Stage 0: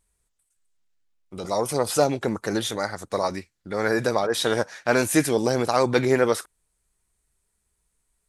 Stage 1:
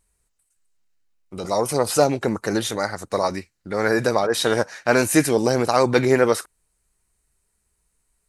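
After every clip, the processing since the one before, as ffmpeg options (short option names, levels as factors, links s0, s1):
-af "bandreject=f=3400:w=11,volume=1.41"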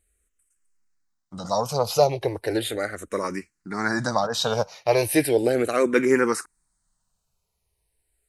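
-filter_complex "[0:a]asplit=2[s0][s1];[s1]afreqshift=-0.36[s2];[s0][s2]amix=inputs=2:normalize=1"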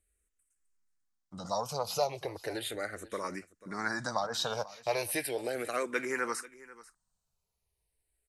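-filter_complex "[0:a]acrossover=split=620|2700[s0][s1][s2];[s0]acompressor=threshold=0.0282:ratio=6[s3];[s3][s1][s2]amix=inputs=3:normalize=0,aecho=1:1:490:0.112,volume=0.422"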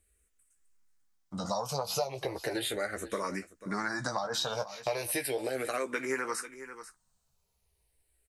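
-filter_complex "[0:a]acompressor=threshold=0.0158:ratio=6,asplit=2[s0][s1];[s1]adelay=15,volume=0.422[s2];[s0][s2]amix=inputs=2:normalize=0,volume=2"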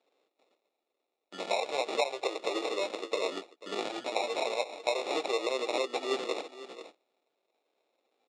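-af "acrusher=samples=28:mix=1:aa=0.000001,highpass=f=360:w=0.5412,highpass=f=360:w=1.3066,equalizer=f=1000:t=q:w=4:g=-8,equalizer=f=1900:t=q:w=4:g=-5,equalizer=f=3500:t=q:w=4:g=5,equalizer=f=5900:t=q:w=4:g=-6,lowpass=f=7100:w=0.5412,lowpass=f=7100:w=1.3066,volume=1.58"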